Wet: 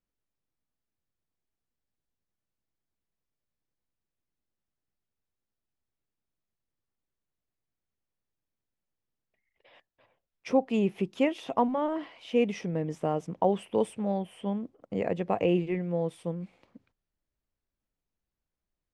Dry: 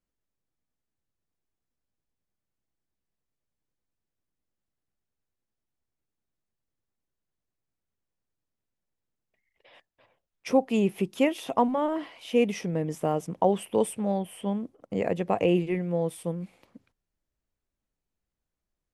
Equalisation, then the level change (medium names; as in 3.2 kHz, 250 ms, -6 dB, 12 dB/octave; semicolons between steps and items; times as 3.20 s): distance through air 78 m; -2.0 dB